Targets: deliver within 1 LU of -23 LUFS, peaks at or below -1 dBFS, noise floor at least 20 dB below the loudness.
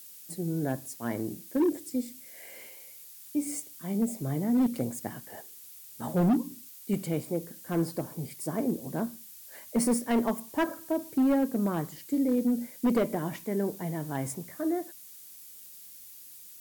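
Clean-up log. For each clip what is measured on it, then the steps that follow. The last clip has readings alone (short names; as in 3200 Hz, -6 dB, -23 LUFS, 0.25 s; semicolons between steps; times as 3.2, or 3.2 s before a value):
clipped 1.3%; flat tops at -20.0 dBFS; noise floor -49 dBFS; noise floor target -51 dBFS; loudness -30.5 LUFS; peak -20.0 dBFS; loudness target -23.0 LUFS
-> clip repair -20 dBFS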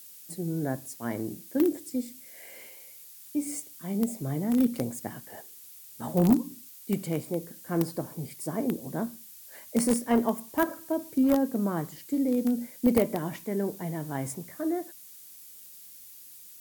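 clipped 0.0%; noise floor -49 dBFS; noise floor target -50 dBFS
-> noise print and reduce 6 dB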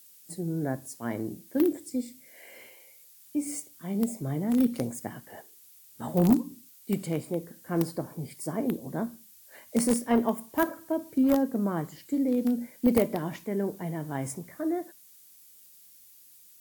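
noise floor -55 dBFS; loudness -29.5 LUFS; peak -11.0 dBFS; loudness target -23.0 LUFS
-> gain +6.5 dB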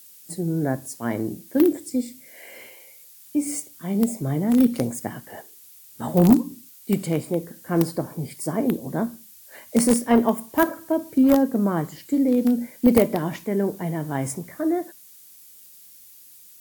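loudness -23.0 LUFS; peak -4.5 dBFS; noise floor -48 dBFS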